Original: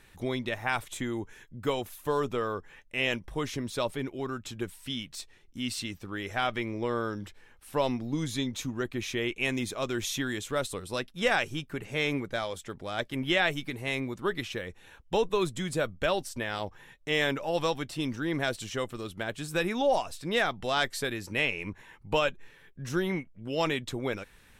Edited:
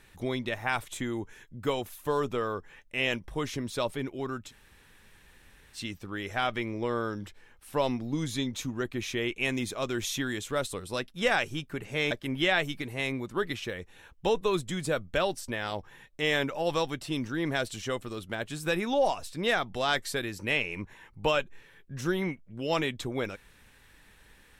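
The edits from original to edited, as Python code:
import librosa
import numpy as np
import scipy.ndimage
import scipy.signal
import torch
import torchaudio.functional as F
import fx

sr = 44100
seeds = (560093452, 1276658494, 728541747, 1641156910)

y = fx.edit(x, sr, fx.room_tone_fill(start_s=4.48, length_s=1.3, crossfade_s=0.1),
    fx.cut(start_s=12.11, length_s=0.88), tone=tone)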